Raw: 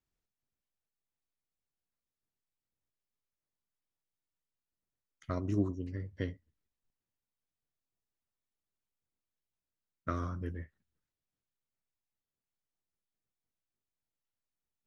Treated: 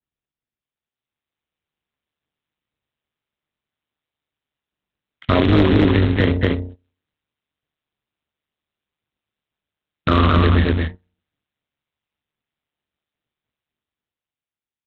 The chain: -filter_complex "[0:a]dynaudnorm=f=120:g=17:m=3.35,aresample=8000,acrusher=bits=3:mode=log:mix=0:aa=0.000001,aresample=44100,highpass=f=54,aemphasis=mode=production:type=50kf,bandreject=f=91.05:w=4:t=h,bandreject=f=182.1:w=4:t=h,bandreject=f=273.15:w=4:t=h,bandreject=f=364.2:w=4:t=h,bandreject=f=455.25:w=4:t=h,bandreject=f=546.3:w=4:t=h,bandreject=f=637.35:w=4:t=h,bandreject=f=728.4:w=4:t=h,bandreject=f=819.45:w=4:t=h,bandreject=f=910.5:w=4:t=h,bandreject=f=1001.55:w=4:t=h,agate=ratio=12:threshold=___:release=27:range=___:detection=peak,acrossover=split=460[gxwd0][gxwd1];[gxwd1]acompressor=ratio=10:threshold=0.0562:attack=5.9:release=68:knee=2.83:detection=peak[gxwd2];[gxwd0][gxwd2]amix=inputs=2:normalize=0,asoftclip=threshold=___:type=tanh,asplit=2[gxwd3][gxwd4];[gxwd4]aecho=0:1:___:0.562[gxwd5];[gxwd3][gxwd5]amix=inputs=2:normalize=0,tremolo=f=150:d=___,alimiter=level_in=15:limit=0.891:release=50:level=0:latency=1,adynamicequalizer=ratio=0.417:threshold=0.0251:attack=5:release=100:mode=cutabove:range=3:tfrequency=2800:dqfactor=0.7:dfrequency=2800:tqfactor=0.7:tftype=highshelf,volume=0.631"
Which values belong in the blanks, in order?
0.00251, 0.126, 0.188, 227, 0.71